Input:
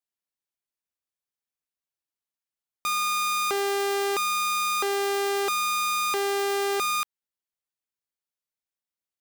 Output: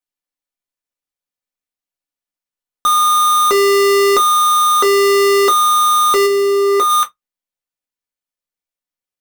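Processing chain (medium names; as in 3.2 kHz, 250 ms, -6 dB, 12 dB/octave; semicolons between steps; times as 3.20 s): square wave that keeps the level; 6.25–6.89 s: high-pass 140 Hz -> 350 Hz 24 dB/octave; waveshaping leveller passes 2; reverberation RT60 0.15 s, pre-delay 4 ms, DRR 2.5 dB; trim +2.5 dB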